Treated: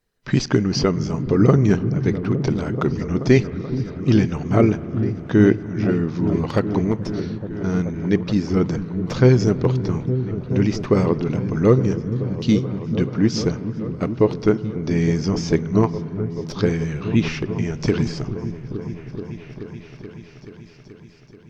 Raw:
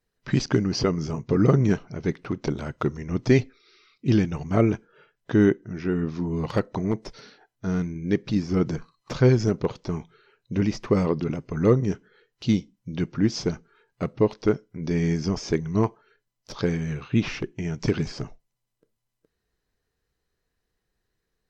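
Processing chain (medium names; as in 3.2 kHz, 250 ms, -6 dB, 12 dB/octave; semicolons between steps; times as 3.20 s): delay with an opening low-pass 431 ms, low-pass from 200 Hz, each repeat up 1 oct, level -6 dB; spring tank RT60 3.9 s, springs 47 ms, chirp 55 ms, DRR 17.5 dB; trim +4 dB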